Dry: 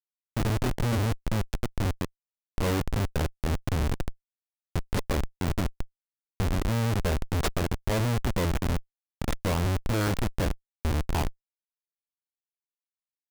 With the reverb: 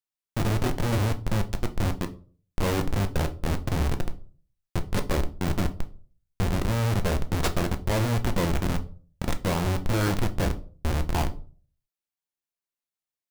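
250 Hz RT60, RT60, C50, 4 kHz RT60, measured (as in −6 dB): 0.50 s, 0.40 s, 17.0 dB, 0.25 s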